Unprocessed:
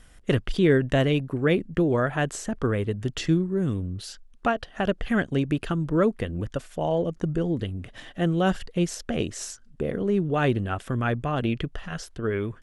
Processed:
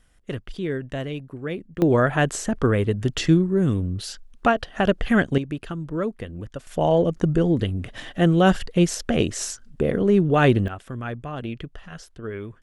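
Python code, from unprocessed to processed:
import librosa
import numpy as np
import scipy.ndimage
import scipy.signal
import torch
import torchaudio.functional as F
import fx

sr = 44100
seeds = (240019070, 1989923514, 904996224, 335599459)

y = fx.gain(x, sr, db=fx.steps((0.0, -8.0), (1.82, 5.0), (5.38, -4.5), (6.67, 6.0), (10.68, -5.5)))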